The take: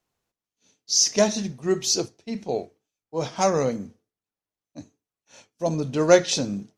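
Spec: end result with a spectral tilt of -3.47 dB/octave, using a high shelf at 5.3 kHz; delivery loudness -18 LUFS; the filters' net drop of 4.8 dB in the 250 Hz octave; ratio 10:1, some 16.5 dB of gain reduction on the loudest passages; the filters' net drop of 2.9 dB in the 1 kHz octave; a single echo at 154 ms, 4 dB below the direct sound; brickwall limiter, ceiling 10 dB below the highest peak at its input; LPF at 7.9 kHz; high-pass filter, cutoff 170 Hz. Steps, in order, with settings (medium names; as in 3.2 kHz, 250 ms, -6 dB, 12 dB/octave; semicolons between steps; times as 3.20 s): high-pass 170 Hz; low-pass 7.9 kHz; peaking EQ 250 Hz -5.5 dB; peaking EQ 1 kHz -4 dB; treble shelf 5.3 kHz +4 dB; compression 10:1, threshold -28 dBFS; peak limiter -26 dBFS; delay 154 ms -4 dB; trim +17.5 dB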